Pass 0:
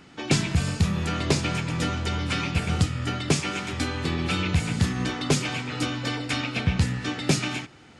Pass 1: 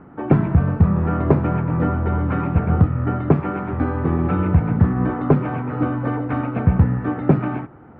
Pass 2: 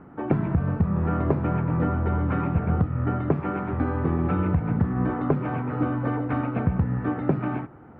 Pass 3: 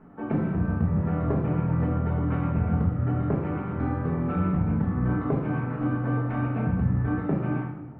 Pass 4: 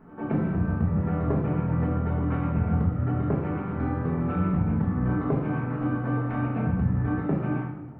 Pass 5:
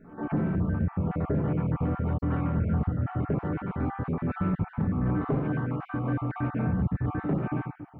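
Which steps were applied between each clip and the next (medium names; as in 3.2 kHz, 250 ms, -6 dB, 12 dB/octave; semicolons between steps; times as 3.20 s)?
low-pass 1.3 kHz 24 dB/octave; trim +8 dB
compression, threshold -15 dBFS, peak gain reduction 7 dB; trim -3 dB
simulated room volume 290 m³, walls mixed, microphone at 1.5 m; trim -8 dB
pre-echo 101 ms -15 dB
random holes in the spectrogram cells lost 26%; saturation -17.5 dBFS, distortion -19 dB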